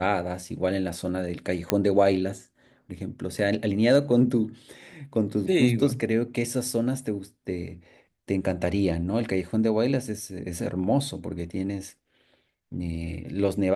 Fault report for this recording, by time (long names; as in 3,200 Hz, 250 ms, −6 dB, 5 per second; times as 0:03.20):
0:01.70: click −6 dBFS